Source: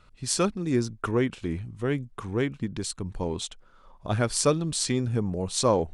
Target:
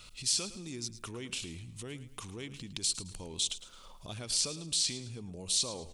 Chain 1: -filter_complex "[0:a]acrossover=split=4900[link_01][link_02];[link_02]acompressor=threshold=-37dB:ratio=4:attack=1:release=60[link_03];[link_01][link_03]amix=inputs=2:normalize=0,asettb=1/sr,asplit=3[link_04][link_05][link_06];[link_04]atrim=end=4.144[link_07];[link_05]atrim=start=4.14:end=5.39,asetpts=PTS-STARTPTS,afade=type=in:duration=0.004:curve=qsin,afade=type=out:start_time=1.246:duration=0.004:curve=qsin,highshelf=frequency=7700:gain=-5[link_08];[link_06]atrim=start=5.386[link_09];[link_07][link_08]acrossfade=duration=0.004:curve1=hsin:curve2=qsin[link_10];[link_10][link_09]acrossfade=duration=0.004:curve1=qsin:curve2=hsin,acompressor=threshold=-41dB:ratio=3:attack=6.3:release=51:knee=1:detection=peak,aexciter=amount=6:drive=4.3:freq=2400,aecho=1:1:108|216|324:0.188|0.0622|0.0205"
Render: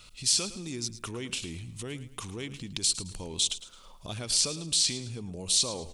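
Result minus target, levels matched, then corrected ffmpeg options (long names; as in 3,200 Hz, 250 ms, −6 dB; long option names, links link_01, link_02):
downward compressor: peak gain reduction −5 dB
-filter_complex "[0:a]acrossover=split=4900[link_01][link_02];[link_02]acompressor=threshold=-37dB:ratio=4:attack=1:release=60[link_03];[link_01][link_03]amix=inputs=2:normalize=0,asettb=1/sr,asplit=3[link_04][link_05][link_06];[link_04]atrim=end=4.144[link_07];[link_05]atrim=start=4.14:end=5.39,asetpts=PTS-STARTPTS,afade=type=in:duration=0.004:curve=qsin,afade=type=out:start_time=1.246:duration=0.004:curve=qsin,highshelf=frequency=7700:gain=-5[link_08];[link_06]atrim=start=5.386[link_09];[link_07][link_08]acrossfade=duration=0.004:curve1=hsin:curve2=qsin[link_10];[link_10][link_09]acrossfade=duration=0.004:curve1=qsin:curve2=hsin,acompressor=threshold=-48.5dB:ratio=3:attack=6.3:release=51:knee=1:detection=peak,aexciter=amount=6:drive=4.3:freq=2400,aecho=1:1:108|216|324:0.188|0.0622|0.0205"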